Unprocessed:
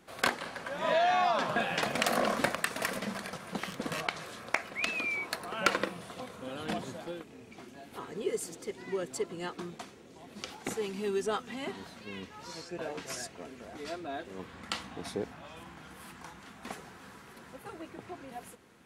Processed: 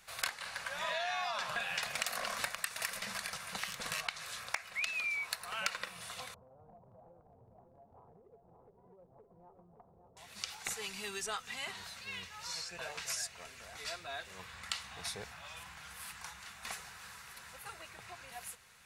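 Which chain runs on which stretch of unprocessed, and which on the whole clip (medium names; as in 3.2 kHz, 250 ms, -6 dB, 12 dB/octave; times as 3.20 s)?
6.34–10.17 s: steep low-pass 840 Hz + compression 4:1, threshold -48 dBFS + delay 570 ms -6 dB
whole clip: amplifier tone stack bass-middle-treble 10-0-10; band-stop 3.2 kHz, Q 16; compression 3:1, threshold -43 dBFS; trim +7.5 dB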